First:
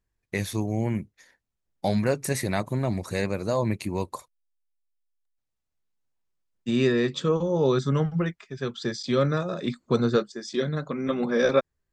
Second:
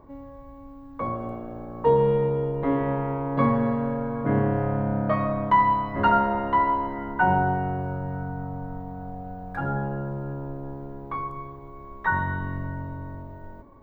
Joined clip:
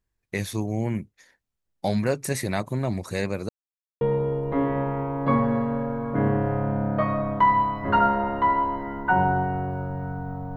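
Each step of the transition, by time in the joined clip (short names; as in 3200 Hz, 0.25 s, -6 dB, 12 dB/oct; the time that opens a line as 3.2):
first
3.49–4.01 mute
4.01 switch to second from 2.12 s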